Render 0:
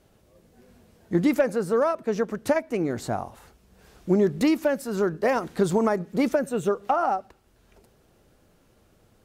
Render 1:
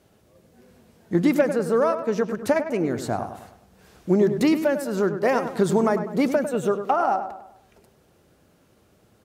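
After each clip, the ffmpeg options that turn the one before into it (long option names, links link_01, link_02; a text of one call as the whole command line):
ffmpeg -i in.wav -filter_complex "[0:a]highpass=69,asplit=2[link_01][link_02];[link_02]adelay=101,lowpass=frequency=2300:poles=1,volume=-9dB,asplit=2[link_03][link_04];[link_04]adelay=101,lowpass=frequency=2300:poles=1,volume=0.46,asplit=2[link_05][link_06];[link_06]adelay=101,lowpass=frequency=2300:poles=1,volume=0.46,asplit=2[link_07][link_08];[link_08]adelay=101,lowpass=frequency=2300:poles=1,volume=0.46,asplit=2[link_09][link_10];[link_10]adelay=101,lowpass=frequency=2300:poles=1,volume=0.46[link_11];[link_03][link_05][link_07][link_09][link_11]amix=inputs=5:normalize=0[link_12];[link_01][link_12]amix=inputs=2:normalize=0,volume=1.5dB" out.wav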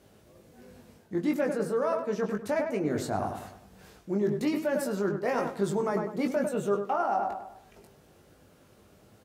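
ffmpeg -i in.wav -filter_complex "[0:a]areverse,acompressor=threshold=-27dB:ratio=6,areverse,asplit=2[link_01][link_02];[link_02]adelay=20,volume=-4.5dB[link_03];[link_01][link_03]amix=inputs=2:normalize=0" out.wav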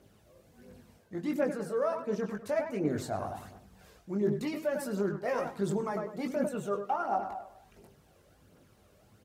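ffmpeg -i in.wav -af "aphaser=in_gain=1:out_gain=1:delay=2:decay=0.44:speed=1.4:type=triangular,volume=-5dB" out.wav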